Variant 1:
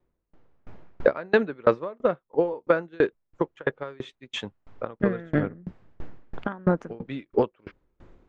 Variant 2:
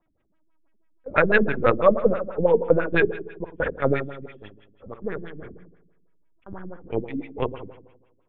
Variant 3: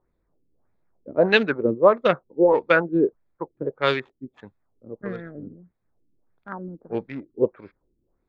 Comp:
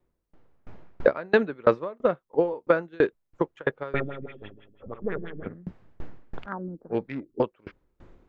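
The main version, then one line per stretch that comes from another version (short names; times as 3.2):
1
3.94–5.46 from 2
6.46–7.4 from 3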